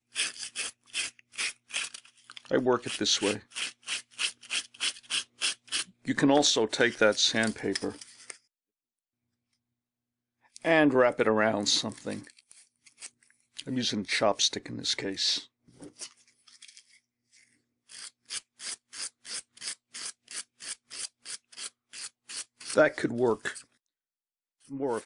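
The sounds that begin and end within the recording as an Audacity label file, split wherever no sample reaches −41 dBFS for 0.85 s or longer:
10.560000	16.800000	sound
17.920000	23.610000	sound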